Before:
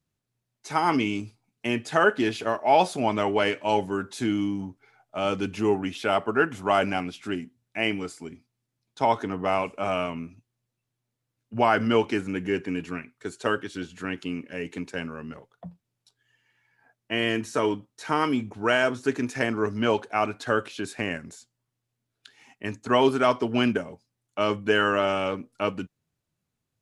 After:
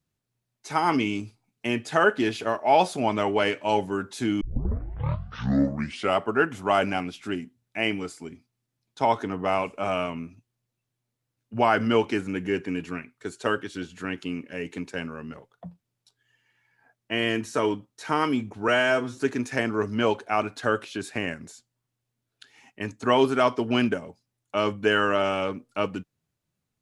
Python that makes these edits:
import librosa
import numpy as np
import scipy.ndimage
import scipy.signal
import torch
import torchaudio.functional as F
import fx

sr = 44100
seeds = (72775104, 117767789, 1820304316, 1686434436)

y = fx.edit(x, sr, fx.tape_start(start_s=4.41, length_s=1.79),
    fx.stretch_span(start_s=18.68, length_s=0.33, factor=1.5), tone=tone)